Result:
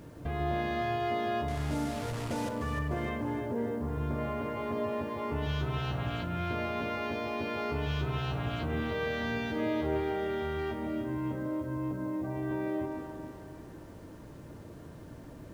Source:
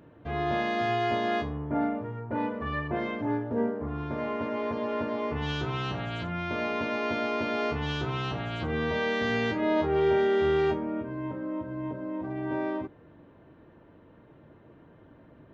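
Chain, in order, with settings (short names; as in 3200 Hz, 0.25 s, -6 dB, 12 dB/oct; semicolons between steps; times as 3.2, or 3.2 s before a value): 1.48–2.49 delta modulation 64 kbps, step -30.5 dBFS; low shelf 110 Hz +9.5 dB; compressor 2.5:1, threshold -38 dBFS, peak gain reduction 12 dB; bit-crush 11-bit; echo with dull and thin repeats by turns 0.151 s, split 960 Hz, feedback 68%, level -5 dB; gain +3 dB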